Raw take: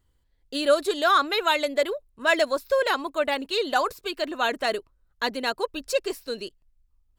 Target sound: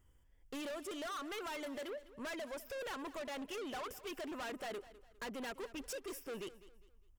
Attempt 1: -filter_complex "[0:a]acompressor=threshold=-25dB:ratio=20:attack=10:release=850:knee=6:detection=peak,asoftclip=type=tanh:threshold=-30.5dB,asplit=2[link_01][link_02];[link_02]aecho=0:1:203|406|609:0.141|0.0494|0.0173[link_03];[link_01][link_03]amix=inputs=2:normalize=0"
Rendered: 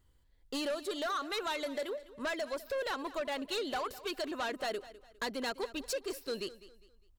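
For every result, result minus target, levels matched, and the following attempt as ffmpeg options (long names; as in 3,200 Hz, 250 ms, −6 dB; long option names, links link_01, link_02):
soft clipping: distortion −6 dB; 4,000 Hz band +2.0 dB
-filter_complex "[0:a]acompressor=threshold=-25dB:ratio=20:attack=10:release=850:knee=6:detection=peak,asoftclip=type=tanh:threshold=-41dB,asplit=2[link_01][link_02];[link_02]aecho=0:1:203|406|609:0.141|0.0494|0.0173[link_03];[link_01][link_03]amix=inputs=2:normalize=0"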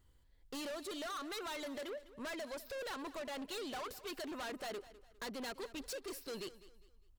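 4,000 Hz band +2.5 dB
-filter_complex "[0:a]acompressor=threshold=-25dB:ratio=20:attack=10:release=850:knee=6:detection=peak,asuperstop=centerf=4100:order=4:qfactor=2.5,asoftclip=type=tanh:threshold=-41dB,asplit=2[link_01][link_02];[link_02]aecho=0:1:203|406|609:0.141|0.0494|0.0173[link_03];[link_01][link_03]amix=inputs=2:normalize=0"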